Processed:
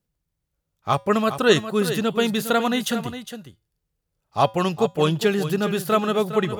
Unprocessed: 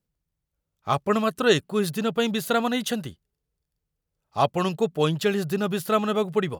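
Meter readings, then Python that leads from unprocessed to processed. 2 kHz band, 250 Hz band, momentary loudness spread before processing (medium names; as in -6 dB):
+3.0 dB, +2.5 dB, 7 LU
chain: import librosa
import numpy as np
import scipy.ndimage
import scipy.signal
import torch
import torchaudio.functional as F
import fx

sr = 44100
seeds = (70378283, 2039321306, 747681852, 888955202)

p1 = fx.comb_fb(x, sr, f0_hz=110.0, decay_s=0.34, harmonics='odd', damping=0.0, mix_pct=40)
p2 = p1 + fx.echo_single(p1, sr, ms=409, db=-11.0, dry=0)
y = F.gain(torch.from_numpy(p2), 6.5).numpy()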